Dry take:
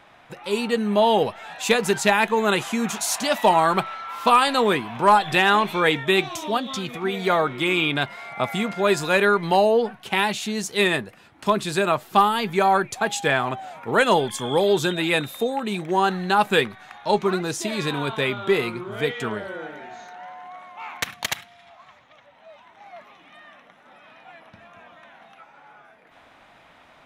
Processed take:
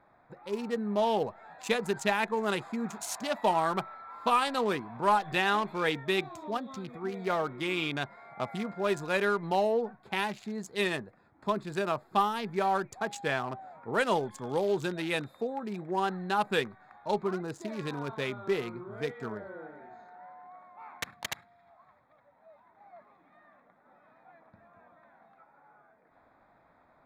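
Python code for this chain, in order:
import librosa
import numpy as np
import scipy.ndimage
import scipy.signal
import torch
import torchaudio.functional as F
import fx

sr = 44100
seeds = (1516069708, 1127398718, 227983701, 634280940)

y = fx.wiener(x, sr, points=15)
y = y * 10.0 ** (-9.0 / 20.0)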